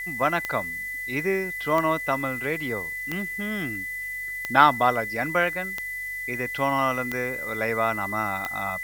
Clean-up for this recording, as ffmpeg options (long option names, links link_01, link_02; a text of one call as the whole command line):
ffmpeg -i in.wav -af "adeclick=threshold=4,bandreject=frequency=47.8:width_type=h:width=4,bandreject=frequency=95.6:width_type=h:width=4,bandreject=frequency=143.4:width_type=h:width=4,bandreject=frequency=2000:width=30,afftdn=noise_reduction=30:noise_floor=-33" out.wav